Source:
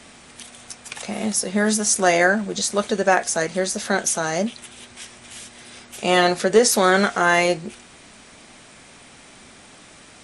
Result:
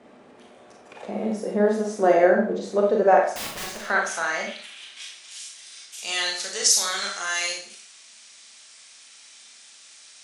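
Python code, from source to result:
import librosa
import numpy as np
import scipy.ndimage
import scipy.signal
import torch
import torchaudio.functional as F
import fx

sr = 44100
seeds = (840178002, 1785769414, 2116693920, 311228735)

y = fx.filter_sweep_bandpass(x, sr, from_hz=450.0, to_hz=5700.0, start_s=2.85, end_s=5.44, q=1.2)
y = fx.overflow_wrap(y, sr, gain_db=30.0, at=(3.23, 3.76), fade=0.02)
y = fx.rev_schroeder(y, sr, rt60_s=0.45, comb_ms=28, drr_db=0.0)
y = y * 10.0 ** (1.0 / 20.0)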